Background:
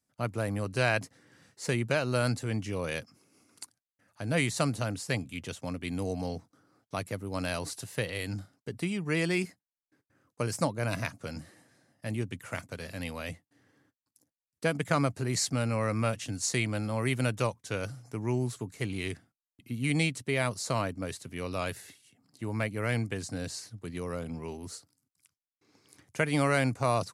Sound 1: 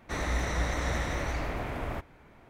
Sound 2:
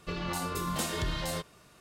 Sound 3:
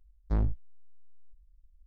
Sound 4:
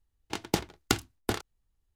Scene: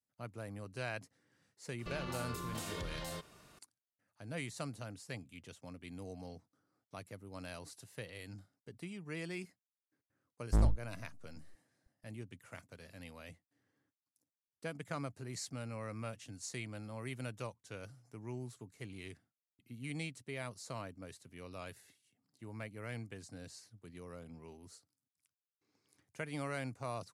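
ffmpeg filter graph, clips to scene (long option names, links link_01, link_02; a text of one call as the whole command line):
ffmpeg -i bed.wav -i cue0.wav -i cue1.wav -i cue2.wav -filter_complex "[0:a]volume=-14dB[link_01];[2:a]acompressor=threshold=-36dB:ratio=6:attack=3.2:release=140:knee=1:detection=peak[link_02];[3:a]aeval=exprs='sgn(val(0))*max(abs(val(0))-0.00316,0)':channel_layout=same[link_03];[link_02]atrim=end=1.8,asetpts=PTS-STARTPTS,volume=-3dB,afade=type=in:duration=0.004:curve=hsin,afade=type=out:start_time=1.796:duration=0.004:curve=hsin,adelay=1790[link_04];[link_03]atrim=end=1.86,asetpts=PTS-STARTPTS,volume=-0.5dB,afade=type=in:duration=0.004:curve=hsin,afade=type=out:start_time=1.856:duration=0.004:curve=hsin,adelay=10220[link_05];[link_01][link_04][link_05]amix=inputs=3:normalize=0" out.wav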